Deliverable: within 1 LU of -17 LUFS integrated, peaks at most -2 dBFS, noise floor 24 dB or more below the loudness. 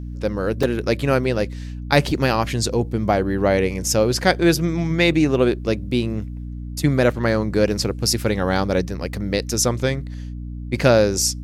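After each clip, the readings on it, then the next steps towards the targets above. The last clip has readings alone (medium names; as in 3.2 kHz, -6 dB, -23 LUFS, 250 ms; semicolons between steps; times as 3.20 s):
dropouts 1; longest dropout 4.0 ms; hum 60 Hz; highest harmonic 300 Hz; hum level -28 dBFS; loudness -20.0 LUFS; peak level -1.5 dBFS; loudness target -17.0 LUFS
-> interpolate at 0.63 s, 4 ms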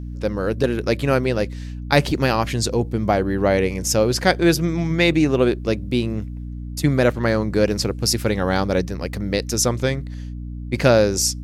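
dropouts 0; hum 60 Hz; highest harmonic 300 Hz; hum level -28 dBFS
-> de-hum 60 Hz, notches 5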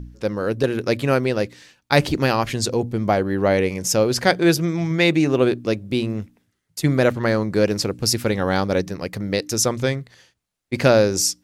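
hum not found; loudness -20.5 LUFS; peak level -1.5 dBFS; loudness target -17.0 LUFS
-> trim +3.5 dB; peak limiter -2 dBFS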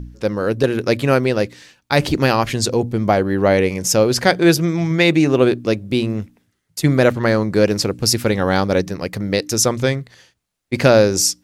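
loudness -17.0 LUFS; peak level -2.0 dBFS; noise floor -69 dBFS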